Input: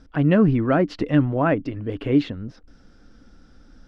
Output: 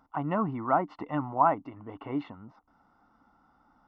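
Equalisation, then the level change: polynomial smoothing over 65 samples; HPF 310 Hz 6 dB/oct; resonant low shelf 660 Hz -9.5 dB, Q 3; +1.5 dB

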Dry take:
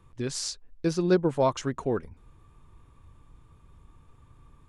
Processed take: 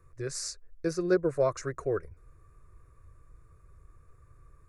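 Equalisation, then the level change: fixed phaser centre 860 Hz, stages 6; 0.0 dB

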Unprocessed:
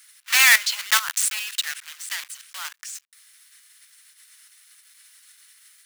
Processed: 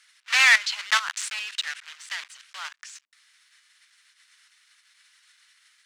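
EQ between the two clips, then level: air absorption 100 m; 0.0 dB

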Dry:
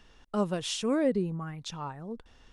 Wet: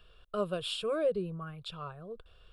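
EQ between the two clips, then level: fixed phaser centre 1300 Hz, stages 8; 0.0 dB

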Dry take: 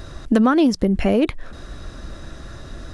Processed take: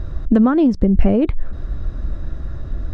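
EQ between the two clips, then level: LPF 1200 Hz 6 dB/oct; low shelf 100 Hz +9.5 dB; low shelf 230 Hz +5 dB; -1.0 dB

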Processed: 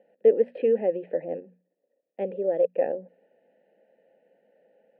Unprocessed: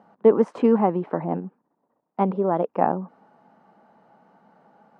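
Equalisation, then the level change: vowel filter e; notches 60/120/180/240 Hz; fixed phaser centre 2800 Hz, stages 4; +8.5 dB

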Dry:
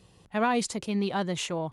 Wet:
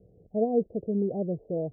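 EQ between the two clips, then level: steep low-pass 690 Hz 72 dB/oct; bell 450 Hz +8 dB 0.26 oct; 0.0 dB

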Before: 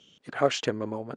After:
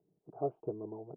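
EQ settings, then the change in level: ladder low-pass 680 Hz, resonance 50%; air absorption 430 m; fixed phaser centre 360 Hz, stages 8; +1.5 dB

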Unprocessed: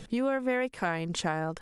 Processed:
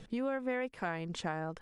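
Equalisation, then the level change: high shelf 7100 Hz -10.5 dB; -6.0 dB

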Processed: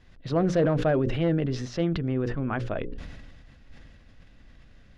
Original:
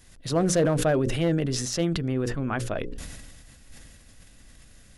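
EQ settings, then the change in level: air absorption 240 m; 0.0 dB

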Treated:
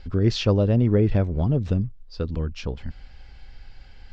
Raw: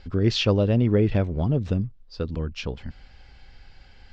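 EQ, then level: dynamic EQ 2900 Hz, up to -5 dB, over -44 dBFS, Q 1.3; low shelf 65 Hz +7 dB; 0.0 dB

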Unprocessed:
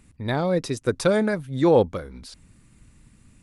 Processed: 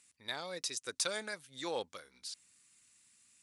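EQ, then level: band-pass 6800 Hz, Q 0.86; +1.0 dB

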